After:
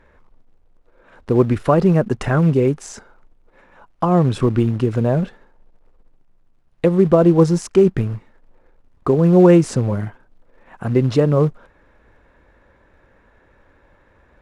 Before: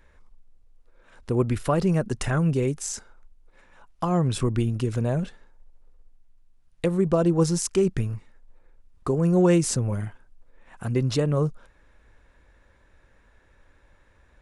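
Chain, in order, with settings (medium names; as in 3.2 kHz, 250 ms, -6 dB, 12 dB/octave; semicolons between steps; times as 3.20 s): in parallel at -4 dB: short-mantissa float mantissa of 2-bit; on the sum: low-pass 1.2 kHz 6 dB/octave; bass shelf 99 Hz -11 dB; trim +6 dB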